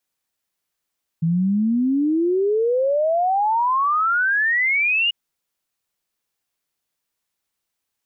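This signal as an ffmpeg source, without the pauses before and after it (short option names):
-f lavfi -i "aevalsrc='0.158*clip(min(t,3.89-t)/0.01,0,1)*sin(2*PI*160*3.89/log(2900/160)*(exp(log(2900/160)*t/3.89)-1))':d=3.89:s=44100"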